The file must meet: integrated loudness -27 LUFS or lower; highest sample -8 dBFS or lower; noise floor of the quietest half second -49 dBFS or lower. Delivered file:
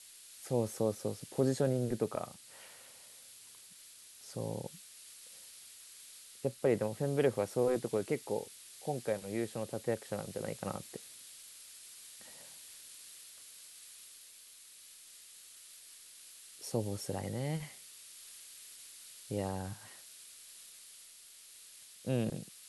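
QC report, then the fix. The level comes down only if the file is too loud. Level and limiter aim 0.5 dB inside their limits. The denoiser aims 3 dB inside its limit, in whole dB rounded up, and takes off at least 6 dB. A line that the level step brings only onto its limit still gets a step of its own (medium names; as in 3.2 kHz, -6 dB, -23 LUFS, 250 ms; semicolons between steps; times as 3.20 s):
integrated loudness -37.0 LUFS: pass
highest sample -17.5 dBFS: pass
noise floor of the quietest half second -56 dBFS: pass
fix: none needed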